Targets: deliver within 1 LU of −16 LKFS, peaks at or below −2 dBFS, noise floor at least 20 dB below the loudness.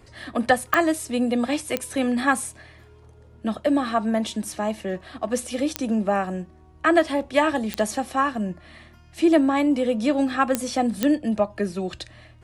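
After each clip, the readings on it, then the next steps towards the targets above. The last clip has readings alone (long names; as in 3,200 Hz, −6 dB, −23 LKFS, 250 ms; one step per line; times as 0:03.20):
number of clicks 6; integrated loudness −23.5 LKFS; sample peak −4.5 dBFS; target loudness −16.0 LKFS
→ click removal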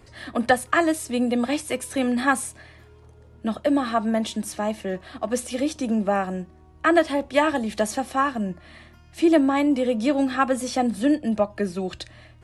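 number of clicks 0; integrated loudness −23.5 LKFS; sample peak −5.5 dBFS; target loudness −16.0 LKFS
→ level +7.5 dB
brickwall limiter −2 dBFS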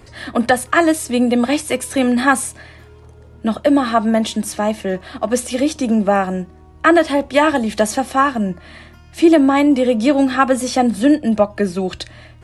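integrated loudness −16.5 LKFS; sample peak −2.0 dBFS; background noise floor −43 dBFS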